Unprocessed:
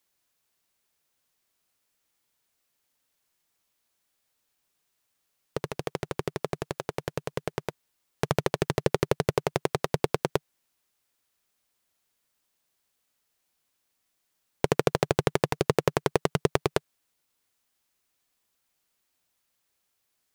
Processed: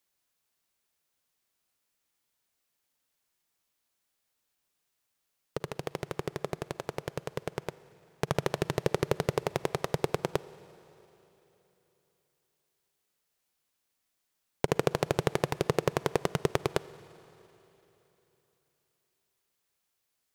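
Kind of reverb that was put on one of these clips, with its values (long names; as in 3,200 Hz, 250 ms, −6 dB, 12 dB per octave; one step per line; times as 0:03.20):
four-comb reverb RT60 3.5 s, DRR 17.5 dB
level −3.5 dB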